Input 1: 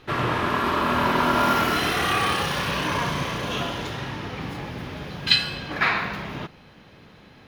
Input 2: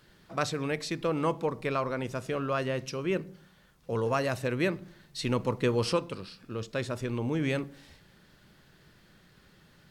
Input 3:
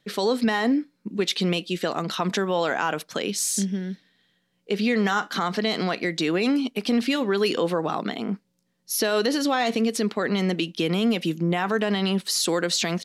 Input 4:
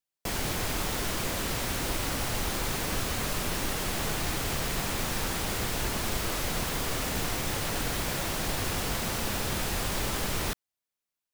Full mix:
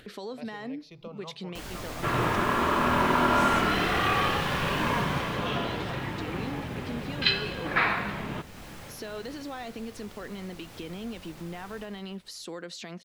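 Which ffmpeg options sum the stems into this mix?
-filter_complex "[0:a]lowpass=4.3k,adelay=1950,volume=-2dB[a];[1:a]asplit=2[b][c];[c]afreqshift=0.3[d];[b][d]amix=inputs=2:normalize=1,volume=-14.5dB[e];[2:a]volume=-15.5dB[f];[3:a]flanger=delay=20:depth=6.3:speed=2.5,acrusher=bits=5:mix=0:aa=0.000001,adelay=1300,volume=-5.5dB,afade=t=out:st=4.86:d=0.55:silence=0.281838,asplit=2[g][h];[h]volume=-7.5dB,aecho=0:1:157|314|471|628|785|942|1099|1256:1|0.56|0.314|0.176|0.0983|0.0551|0.0308|0.0173[i];[a][e][f][g][i]amix=inputs=5:normalize=0,acompressor=mode=upward:threshold=-35dB:ratio=2.5,highshelf=f=5.6k:g=-7.5"

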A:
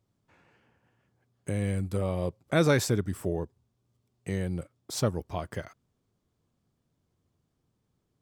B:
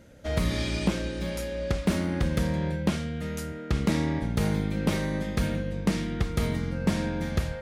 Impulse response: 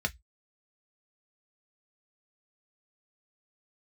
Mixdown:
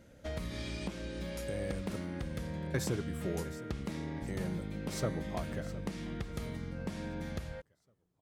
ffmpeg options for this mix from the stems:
-filter_complex "[0:a]asoftclip=type=tanh:threshold=-13.5dB,volume=-7dB,asplit=3[a][b][c];[a]atrim=end=1.96,asetpts=PTS-STARTPTS,afade=t=out:st=1.956:d=0.004:c=hsin[d];[b]atrim=start=1.96:end=2.74,asetpts=PTS-STARTPTS,volume=0[e];[c]atrim=start=2.74,asetpts=PTS-STARTPTS,afade=t=in:d=0.004:c=hsin[f];[d][e][f]concat=n=3:v=0:a=1,asplit=3[g][h][i];[h]volume=-15dB[j];[i]volume=-15.5dB[k];[1:a]acompressor=threshold=-30dB:ratio=6,volume=-5.5dB[l];[2:a]atrim=start_sample=2205[m];[j][m]afir=irnorm=-1:irlink=0[n];[k]aecho=0:1:712|1424|2136|2848|3560|4272:1|0.42|0.176|0.0741|0.0311|0.0131[o];[g][l][n][o]amix=inputs=4:normalize=0"

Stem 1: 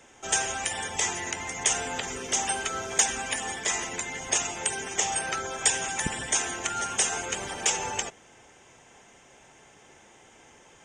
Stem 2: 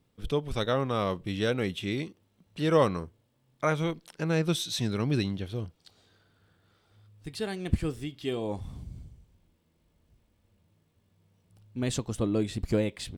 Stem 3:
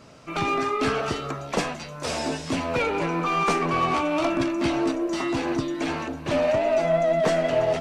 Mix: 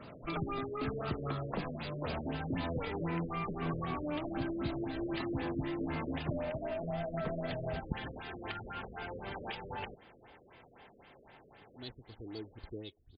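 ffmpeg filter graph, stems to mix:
-filter_complex "[0:a]adelay=1850,volume=-2dB[a];[1:a]aecho=1:1:2.7:0.65,aexciter=amount=10.7:drive=8.5:freq=3.6k,volume=-18.5dB[b];[2:a]acompressor=threshold=-24dB:ratio=6,volume=-0.5dB[c];[a][b][c]amix=inputs=3:normalize=0,acrossover=split=200[d][e];[e]acompressor=threshold=-36dB:ratio=6[f];[d][f]amix=inputs=2:normalize=0,afftfilt=real='re*lt(b*sr/1024,590*pow(5100/590,0.5+0.5*sin(2*PI*3.9*pts/sr)))':imag='im*lt(b*sr/1024,590*pow(5100/590,0.5+0.5*sin(2*PI*3.9*pts/sr)))':win_size=1024:overlap=0.75"

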